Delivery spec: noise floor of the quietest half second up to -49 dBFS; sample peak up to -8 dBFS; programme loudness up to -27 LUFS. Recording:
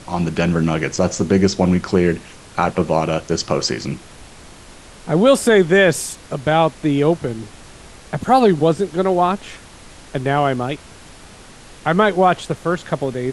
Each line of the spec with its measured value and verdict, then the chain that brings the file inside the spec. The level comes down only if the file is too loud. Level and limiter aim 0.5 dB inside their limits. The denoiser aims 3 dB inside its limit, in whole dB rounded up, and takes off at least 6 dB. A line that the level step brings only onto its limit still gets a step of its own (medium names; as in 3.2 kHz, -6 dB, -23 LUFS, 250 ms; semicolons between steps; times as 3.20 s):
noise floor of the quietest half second -41 dBFS: fail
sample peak -3.0 dBFS: fail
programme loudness -17.5 LUFS: fail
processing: trim -10 dB